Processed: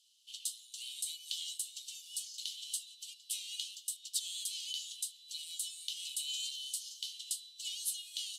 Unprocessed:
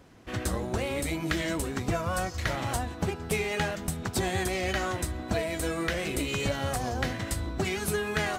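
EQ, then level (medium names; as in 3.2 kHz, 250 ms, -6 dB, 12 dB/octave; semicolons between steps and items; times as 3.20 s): rippled Chebyshev high-pass 2.9 kHz, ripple 3 dB; low-pass 12 kHz 12 dB/octave; +1.0 dB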